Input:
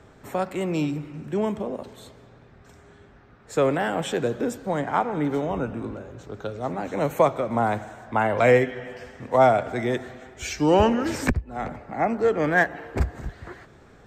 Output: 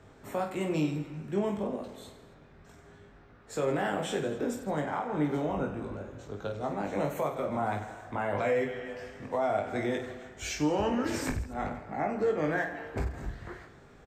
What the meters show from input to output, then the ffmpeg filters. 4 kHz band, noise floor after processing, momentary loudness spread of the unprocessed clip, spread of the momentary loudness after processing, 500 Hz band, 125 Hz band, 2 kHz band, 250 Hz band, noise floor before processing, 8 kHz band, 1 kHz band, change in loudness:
−6.0 dB, −55 dBFS, 17 LU, 12 LU, −8.0 dB, −7.0 dB, −9.0 dB, −6.0 dB, −52 dBFS, −4.0 dB, −9.0 dB, −8.0 dB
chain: -af "alimiter=limit=-17.5dB:level=0:latency=1:release=158,aecho=1:1:20|50|95|162.5|263.8:0.631|0.398|0.251|0.158|0.1,volume=-5.5dB"

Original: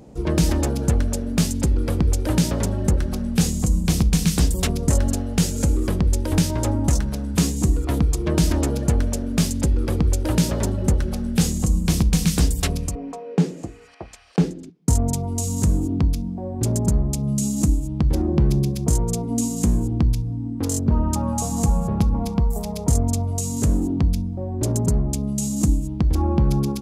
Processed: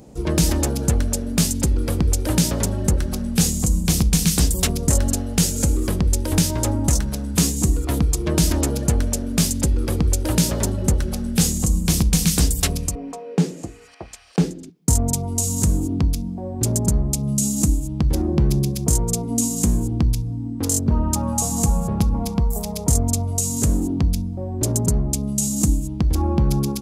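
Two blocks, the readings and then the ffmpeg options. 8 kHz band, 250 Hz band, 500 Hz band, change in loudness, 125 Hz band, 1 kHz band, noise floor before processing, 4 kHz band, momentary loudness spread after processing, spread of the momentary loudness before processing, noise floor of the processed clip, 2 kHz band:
+6.0 dB, 0.0 dB, 0.0 dB, +1.0 dB, 0.0 dB, +0.5 dB, −35 dBFS, +4.0 dB, 4 LU, 5 LU, −35 dBFS, +1.5 dB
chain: -af "highshelf=frequency=4700:gain=8.5"

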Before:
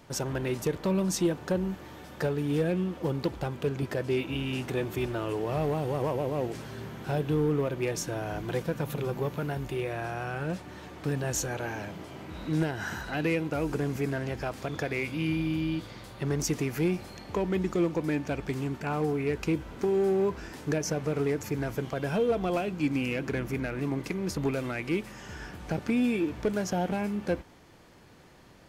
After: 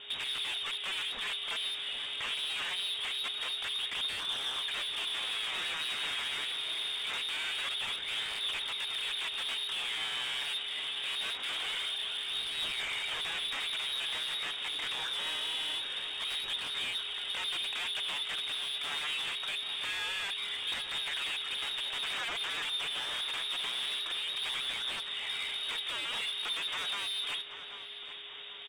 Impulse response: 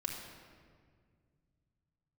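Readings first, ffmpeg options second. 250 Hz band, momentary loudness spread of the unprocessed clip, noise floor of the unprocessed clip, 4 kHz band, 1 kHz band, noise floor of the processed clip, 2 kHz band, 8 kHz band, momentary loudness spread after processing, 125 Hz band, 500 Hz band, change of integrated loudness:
−30.0 dB, 8 LU, −47 dBFS, +15.5 dB, −6.0 dB, −41 dBFS, +2.0 dB, −5.0 dB, 2 LU, below −30 dB, −22.5 dB, −2.5 dB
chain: -filter_complex "[0:a]equalizer=frequency=760:width_type=o:width=1.6:gain=5.5,asplit=2[link_01][link_02];[link_02]acompressor=threshold=-35dB:ratio=6,volume=0dB[link_03];[link_01][link_03]amix=inputs=2:normalize=0,aeval=exprs='0.0398*(abs(mod(val(0)/0.0398+3,4)-2)-1)':channel_layout=same,lowpass=frequency=3200:width_type=q:width=0.5098,lowpass=frequency=3200:width_type=q:width=0.6013,lowpass=frequency=3200:width_type=q:width=0.9,lowpass=frequency=3200:width_type=q:width=2.563,afreqshift=-3800,asoftclip=type=tanh:threshold=-32.5dB,flanger=delay=0.2:depth=6.8:regen=66:speed=0.24:shape=sinusoidal,asplit=2[link_04][link_05];[link_05]adelay=784,lowpass=frequency=2200:poles=1,volume=-9.5dB,asplit=2[link_06][link_07];[link_07]adelay=784,lowpass=frequency=2200:poles=1,volume=0.55,asplit=2[link_08][link_09];[link_09]adelay=784,lowpass=frequency=2200:poles=1,volume=0.55,asplit=2[link_10][link_11];[link_11]adelay=784,lowpass=frequency=2200:poles=1,volume=0.55,asplit=2[link_12][link_13];[link_13]adelay=784,lowpass=frequency=2200:poles=1,volume=0.55,asplit=2[link_14][link_15];[link_15]adelay=784,lowpass=frequency=2200:poles=1,volume=0.55[link_16];[link_06][link_08][link_10][link_12][link_14][link_16]amix=inputs=6:normalize=0[link_17];[link_04][link_17]amix=inputs=2:normalize=0,aeval=exprs='val(0)+0.000501*sin(2*PI*410*n/s)':channel_layout=same,volume=5.5dB"

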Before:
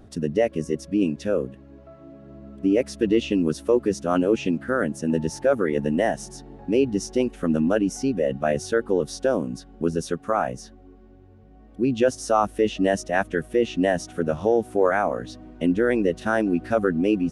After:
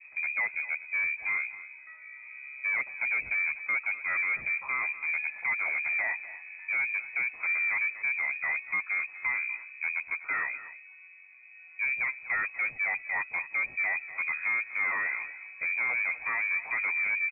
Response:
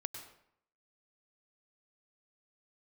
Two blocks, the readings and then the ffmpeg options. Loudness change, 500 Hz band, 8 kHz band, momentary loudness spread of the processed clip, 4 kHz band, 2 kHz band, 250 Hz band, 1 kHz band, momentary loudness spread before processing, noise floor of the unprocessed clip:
−5.5 dB, −32.0 dB, below −40 dB, 8 LU, below −40 dB, +6.5 dB, below −35 dB, −11.5 dB, 6 LU, −49 dBFS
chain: -af "adynamicequalizer=threshold=0.0141:dfrequency=1300:dqfactor=1.2:tfrequency=1300:tqfactor=1.2:attack=5:release=100:ratio=0.375:range=2:mode=cutabove:tftype=bell,flanger=delay=1.3:depth=4.5:regen=-68:speed=0.22:shape=sinusoidal,asoftclip=type=tanh:threshold=-27dB,aecho=1:1:244:0.168,lowpass=frequency=2200:width_type=q:width=0.5098,lowpass=frequency=2200:width_type=q:width=0.6013,lowpass=frequency=2200:width_type=q:width=0.9,lowpass=frequency=2200:width_type=q:width=2.563,afreqshift=-2600,volume=1.5dB"

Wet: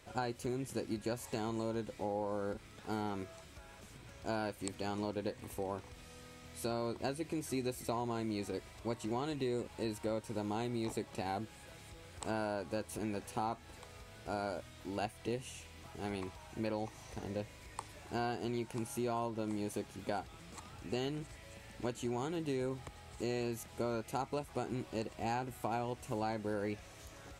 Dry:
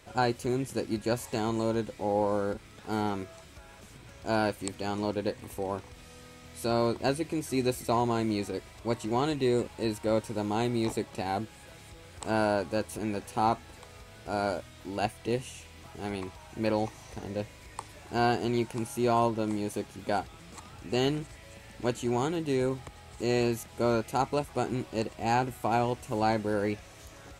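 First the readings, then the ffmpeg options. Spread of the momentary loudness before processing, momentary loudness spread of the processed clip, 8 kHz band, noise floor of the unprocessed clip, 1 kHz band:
19 LU, 13 LU, −6.0 dB, −51 dBFS, −10.0 dB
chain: -af "acompressor=threshold=-30dB:ratio=4,volume=-4dB"

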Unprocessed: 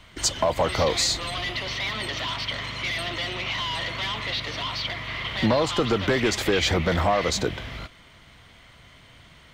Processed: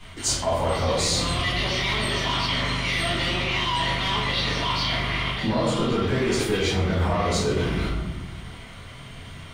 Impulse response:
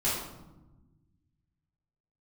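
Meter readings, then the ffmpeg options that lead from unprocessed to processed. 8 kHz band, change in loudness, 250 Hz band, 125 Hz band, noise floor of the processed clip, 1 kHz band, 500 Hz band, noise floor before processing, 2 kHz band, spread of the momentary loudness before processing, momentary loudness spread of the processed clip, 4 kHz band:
+0.5 dB, +1.5 dB, +2.5 dB, +5.0 dB, −41 dBFS, +2.0 dB, 0.0 dB, −52 dBFS, +1.5 dB, 7 LU, 15 LU, +1.5 dB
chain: -filter_complex "[0:a]equalizer=frequency=9200:width=7.4:gain=13.5[link_01];[1:a]atrim=start_sample=2205,asetrate=48510,aresample=44100[link_02];[link_01][link_02]afir=irnorm=-1:irlink=0,areverse,acompressor=threshold=-21dB:ratio=5,areverse"

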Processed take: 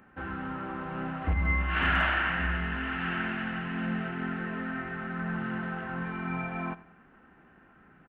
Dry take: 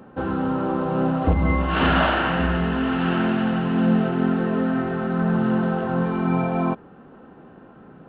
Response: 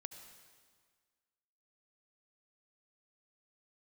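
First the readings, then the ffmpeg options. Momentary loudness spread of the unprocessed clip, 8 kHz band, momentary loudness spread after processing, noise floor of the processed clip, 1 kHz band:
5 LU, can't be measured, 10 LU, −59 dBFS, −9.0 dB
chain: -af "asoftclip=type=hard:threshold=-9dB,equalizer=frequency=125:width_type=o:width=1:gain=-8,equalizer=frequency=250:width_type=o:width=1:gain=-6,equalizer=frequency=500:width_type=o:width=1:gain=-12,equalizer=frequency=1000:width_type=o:width=1:gain=-5,equalizer=frequency=2000:width_type=o:width=1:gain=9,equalizer=frequency=4000:width_type=o:width=1:gain=-10,aecho=1:1:93|186|279:0.112|0.0494|0.0217,volume=-4.5dB"

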